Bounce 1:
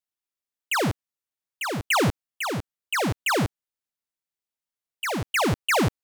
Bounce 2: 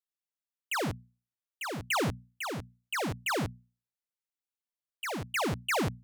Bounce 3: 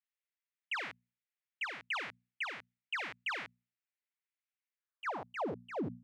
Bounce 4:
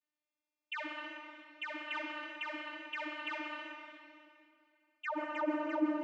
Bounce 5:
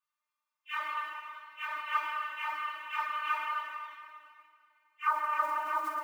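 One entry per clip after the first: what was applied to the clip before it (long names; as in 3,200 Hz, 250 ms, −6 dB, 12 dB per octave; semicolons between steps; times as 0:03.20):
mains-hum notches 60/120/180/240 Hz; level −7.5 dB
band-pass filter sweep 2,100 Hz → 270 Hz, 0:04.72–0:05.74; brickwall limiter −36 dBFS, peak gain reduction 10.5 dB; high-shelf EQ 10,000 Hz −10 dB; level +5.5 dB
downward compressor, threshold −41 dBFS, peak gain reduction 8 dB; channel vocoder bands 32, saw 301 Hz; convolution reverb RT60 2.4 s, pre-delay 113 ms, DRR 1.5 dB; level +7.5 dB
random phases in long frames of 100 ms; noise that follows the level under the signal 25 dB; high-pass with resonance 1,100 Hz, resonance Q 7.8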